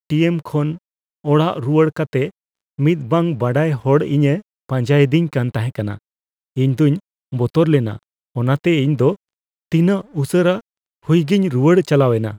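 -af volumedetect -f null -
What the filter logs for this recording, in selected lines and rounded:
mean_volume: -17.4 dB
max_volume: -1.5 dB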